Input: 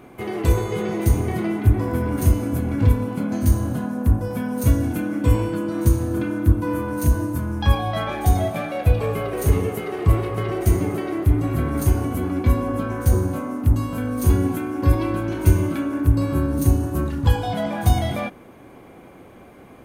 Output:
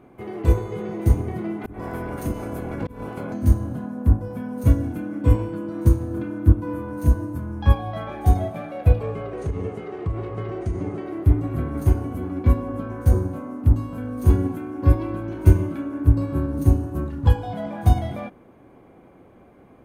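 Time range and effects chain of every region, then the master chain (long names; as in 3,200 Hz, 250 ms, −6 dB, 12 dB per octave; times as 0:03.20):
0:01.60–0:03.32: ceiling on every frequency bin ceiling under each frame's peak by 16 dB + downward compressor 2.5 to 1, threshold −20 dBFS + volume swells 184 ms
0:09.03–0:11.06: low-pass filter 8,000 Hz 24 dB per octave + downward compressor 10 to 1, threshold −17 dBFS
whole clip: high-shelf EQ 2,100 Hz −11 dB; expander for the loud parts 1.5 to 1, over −24 dBFS; level +2.5 dB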